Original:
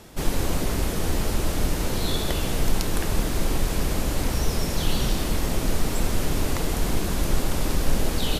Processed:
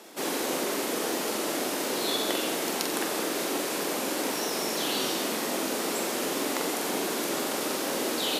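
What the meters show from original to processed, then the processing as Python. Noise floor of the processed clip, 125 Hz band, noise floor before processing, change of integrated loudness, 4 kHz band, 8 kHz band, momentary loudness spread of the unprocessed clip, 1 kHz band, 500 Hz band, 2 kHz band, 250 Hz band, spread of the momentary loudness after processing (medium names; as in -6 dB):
-31 dBFS, -21.5 dB, -28 dBFS, -1.5 dB, +1.0 dB, +1.0 dB, 1 LU, +1.0 dB, +1.0 dB, +1.0 dB, -3.0 dB, 2 LU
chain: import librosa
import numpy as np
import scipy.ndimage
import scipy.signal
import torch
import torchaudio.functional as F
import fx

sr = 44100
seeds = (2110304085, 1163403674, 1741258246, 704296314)

y = scipy.signal.sosfilt(scipy.signal.butter(4, 270.0, 'highpass', fs=sr, output='sos'), x)
y = fx.quant_companded(y, sr, bits=8)
y = fx.room_flutter(y, sr, wall_m=7.7, rt60_s=0.43)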